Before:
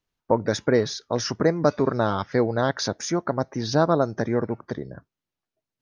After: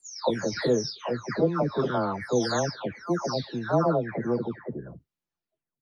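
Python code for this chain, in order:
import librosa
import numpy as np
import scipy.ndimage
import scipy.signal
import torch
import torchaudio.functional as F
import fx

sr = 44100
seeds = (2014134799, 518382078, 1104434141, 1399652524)

y = fx.spec_delay(x, sr, highs='early', ms=583)
y = F.gain(torch.from_numpy(y), -2.0).numpy()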